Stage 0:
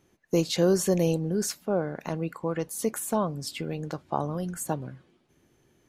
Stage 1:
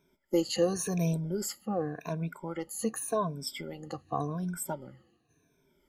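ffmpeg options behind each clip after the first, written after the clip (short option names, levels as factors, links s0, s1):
-af "afftfilt=real='re*pow(10,21/40*sin(2*PI*(1.6*log(max(b,1)*sr/1024/100)/log(2)-(-0.89)*(pts-256)/sr)))':imag='im*pow(10,21/40*sin(2*PI*(1.6*log(max(b,1)*sr/1024/100)/log(2)-(-0.89)*(pts-256)/sr)))':win_size=1024:overlap=0.75,volume=0.376"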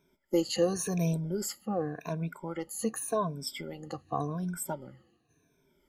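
-af anull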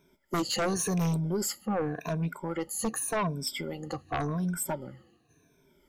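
-af "aeval=exprs='0.178*sin(PI/2*3.16*val(0)/0.178)':c=same,volume=0.355"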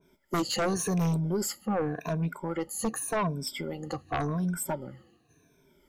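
-af "adynamicequalizer=threshold=0.00562:dfrequency=1800:dqfactor=0.7:tfrequency=1800:tqfactor=0.7:attack=5:release=100:ratio=0.375:range=2:mode=cutabove:tftype=highshelf,volume=1.12"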